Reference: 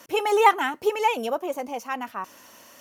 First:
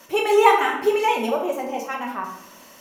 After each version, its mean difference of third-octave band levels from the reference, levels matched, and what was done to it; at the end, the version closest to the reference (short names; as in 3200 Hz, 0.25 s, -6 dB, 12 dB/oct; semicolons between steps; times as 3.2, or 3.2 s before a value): 4.0 dB: shoebox room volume 220 m³, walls mixed, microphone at 1.1 m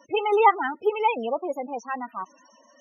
9.5 dB: loudest bins only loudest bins 16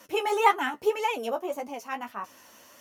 1.0 dB: flange 1.8 Hz, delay 8.8 ms, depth 6.5 ms, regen +24%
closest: third